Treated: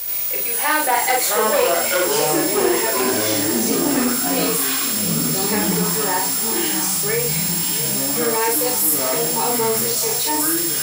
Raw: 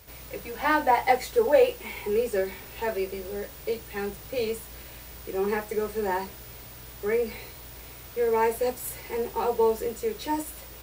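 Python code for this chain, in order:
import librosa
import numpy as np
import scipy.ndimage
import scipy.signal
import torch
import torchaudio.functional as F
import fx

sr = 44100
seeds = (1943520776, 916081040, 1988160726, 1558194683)

p1 = x + fx.echo_single(x, sr, ms=660, db=-13.5, dry=0)
p2 = fx.cheby_harmonics(p1, sr, harmonics=(4, 6), levels_db=(-14, -20), full_scale_db=-8.5)
p3 = fx.riaa(p2, sr, side='recording')
p4 = fx.doubler(p3, sr, ms=43.0, db=-3)
p5 = fx.echo_pitch(p4, sr, ms=397, semitones=-6, count=3, db_per_echo=-3.0)
y = fx.env_flatten(p5, sr, amount_pct=50)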